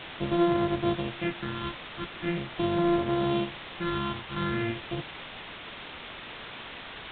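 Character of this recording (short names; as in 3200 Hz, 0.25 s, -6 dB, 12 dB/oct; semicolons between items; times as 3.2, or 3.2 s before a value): a buzz of ramps at a fixed pitch in blocks of 128 samples; phasing stages 6, 0.42 Hz, lowest notch 550–2600 Hz; a quantiser's noise floor 6-bit, dither triangular; µ-law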